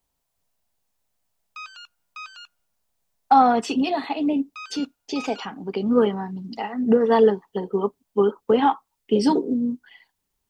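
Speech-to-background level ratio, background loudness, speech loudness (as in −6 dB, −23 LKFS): 18.5 dB, −40.5 LKFS, −22.0 LKFS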